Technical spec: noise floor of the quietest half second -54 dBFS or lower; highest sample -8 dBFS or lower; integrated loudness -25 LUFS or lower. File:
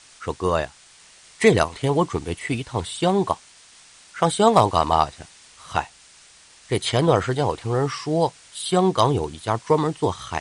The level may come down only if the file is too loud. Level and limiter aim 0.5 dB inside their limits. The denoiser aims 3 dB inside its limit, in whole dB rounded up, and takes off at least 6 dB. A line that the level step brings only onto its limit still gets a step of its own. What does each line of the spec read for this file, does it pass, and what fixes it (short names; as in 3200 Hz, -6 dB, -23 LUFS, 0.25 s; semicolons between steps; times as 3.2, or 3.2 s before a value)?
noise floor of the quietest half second -51 dBFS: fail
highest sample -3.5 dBFS: fail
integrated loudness -22.0 LUFS: fail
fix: gain -3.5 dB; limiter -8.5 dBFS